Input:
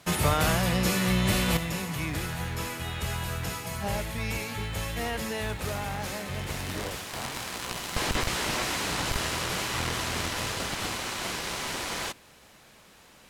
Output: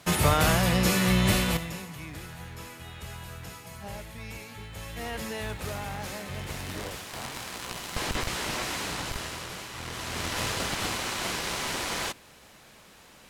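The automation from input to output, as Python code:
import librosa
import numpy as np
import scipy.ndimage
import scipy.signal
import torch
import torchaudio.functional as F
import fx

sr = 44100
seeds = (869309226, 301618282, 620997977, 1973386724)

y = fx.gain(x, sr, db=fx.line((1.31, 2.0), (1.96, -9.0), (4.71, -9.0), (5.18, -2.5), (8.82, -2.5), (9.73, -10.0), (10.41, 1.5)))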